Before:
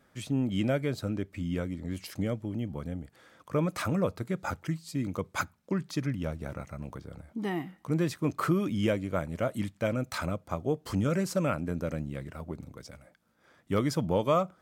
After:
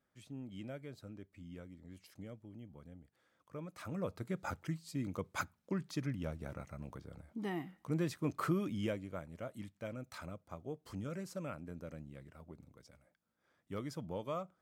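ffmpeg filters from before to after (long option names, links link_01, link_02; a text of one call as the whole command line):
ffmpeg -i in.wav -af "volume=-7dB,afade=type=in:start_time=3.77:duration=0.5:silence=0.281838,afade=type=out:start_time=8.55:duration=0.68:silence=0.421697" out.wav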